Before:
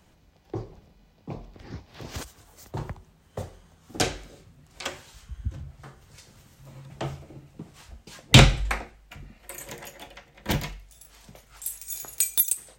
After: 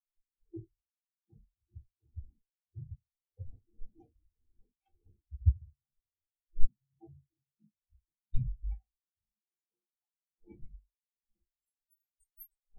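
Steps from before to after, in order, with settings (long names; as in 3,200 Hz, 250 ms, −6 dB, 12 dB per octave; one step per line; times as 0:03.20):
one-sided soft clipper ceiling −12.5 dBFS
wind on the microphone 570 Hz −46 dBFS
0:08.78–0:10.62: low-shelf EQ 200 Hz −6 dB
downward compressor 8 to 1, threshold −29 dBFS, peak gain reduction 18.5 dB
convolution reverb RT60 0.30 s, pre-delay 3 ms, DRR −5.5 dB
every bin expanded away from the loudest bin 4 to 1
level −2 dB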